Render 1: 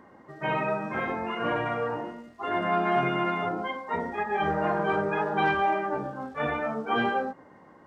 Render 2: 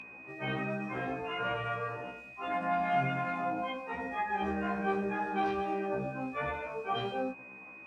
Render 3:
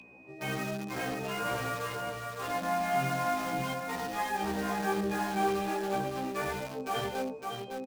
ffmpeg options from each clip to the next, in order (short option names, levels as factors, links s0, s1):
-filter_complex "[0:a]aeval=exprs='val(0)+0.0158*sin(2*PI*2500*n/s)':c=same,acrossover=split=200|3000[s0][s1][s2];[s1]acompressor=threshold=0.0178:ratio=1.5[s3];[s0][s3][s2]amix=inputs=3:normalize=0,afftfilt=real='re*1.73*eq(mod(b,3),0)':imag='im*1.73*eq(mod(b,3),0)':win_size=2048:overlap=0.75"
-filter_complex "[0:a]acrossover=split=130|940|2600[s0][s1][s2][s3];[s2]acrusher=bits=6:mix=0:aa=0.000001[s4];[s0][s1][s4][s3]amix=inputs=4:normalize=0,aecho=1:1:559:0.596"